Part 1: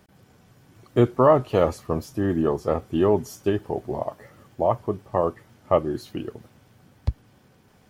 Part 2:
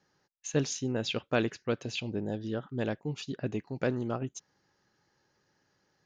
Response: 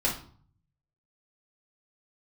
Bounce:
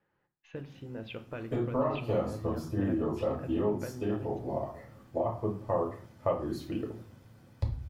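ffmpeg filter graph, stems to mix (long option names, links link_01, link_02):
-filter_complex "[0:a]bandreject=frequency=2900:width=20,acompressor=threshold=-21dB:ratio=6,flanger=delay=9:depth=2.6:regen=-85:speed=1.6:shape=triangular,adelay=550,volume=-5dB,asplit=2[link_01][link_02];[link_02]volume=-6dB[link_03];[1:a]lowpass=frequency=2800:width=0.5412,lowpass=frequency=2800:width=1.3066,acompressor=threshold=-34dB:ratio=6,volume=-5.5dB,asplit=3[link_04][link_05][link_06];[link_05]volume=-14dB[link_07];[link_06]apad=whole_len=372327[link_08];[link_01][link_08]sidechaincompress=threshold=-59dB:ratio=8:attack=16:release=1200[link_09];[2:a]atrim=start_sample=2205[link_10];[link_03][link_07]amix=inputs=2:normalize=0[link_11];[link_11][link_10]afir=irnorm=-1:irlink=0[link_12];[link_09][link_04][link_12]amix=inputs=3:normalize=0"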